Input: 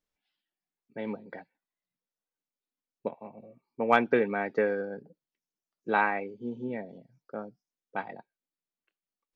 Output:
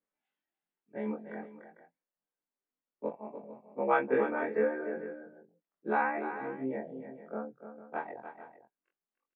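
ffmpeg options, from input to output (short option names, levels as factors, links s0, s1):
-filter_complex "[0:a]afftfilt=real='re':imag='-im':win_size=2048:overlap=0.75,acrossover=split=160 2600:gain=0.112 1 0.112[s0][s1][s2];[s0][s1][s2]amix=inputs=3:normalize=0,asplit=2[s3][s4];[s4]acompressor=threshold=0.0126:ratio=6,volume=0.891[s5];[s3][s5]amix=inputs=2:normalize=0,highshelf=f=2600:g=-7,aecho=1:1:295|450:0.316|0.178"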